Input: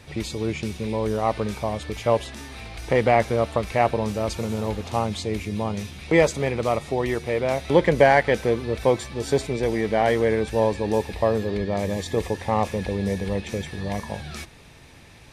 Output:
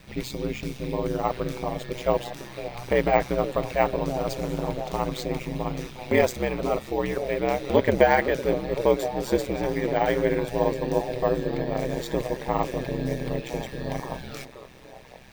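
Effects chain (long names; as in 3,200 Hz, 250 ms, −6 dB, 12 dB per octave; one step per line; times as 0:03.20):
bad sample-rate conversion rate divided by 2×, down filtered, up hold
echo through a band-pass that steps 508 ms, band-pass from 370 Hz, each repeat 0.7 octaves, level −8 dB
ring modulation 64 Hz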